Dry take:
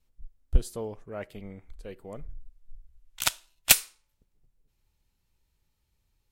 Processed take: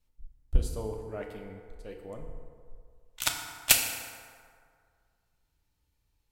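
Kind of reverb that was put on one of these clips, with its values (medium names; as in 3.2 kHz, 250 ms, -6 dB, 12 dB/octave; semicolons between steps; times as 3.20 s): FDN reverb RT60 2.1 s, low-frequency decay 0.75×, high-frequency decay 0.5×, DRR 2.5 dB; trim -3 dB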